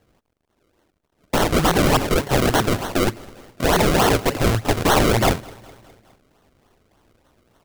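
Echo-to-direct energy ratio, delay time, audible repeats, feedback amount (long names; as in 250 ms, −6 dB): −22.0 dB, 206 ms, 3, 58%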